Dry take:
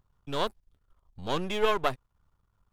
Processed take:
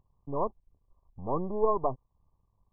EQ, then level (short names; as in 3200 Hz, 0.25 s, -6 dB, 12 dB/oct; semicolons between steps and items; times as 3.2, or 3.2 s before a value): brick-wall FIR low-pass 1200 Hz; 0.0 dB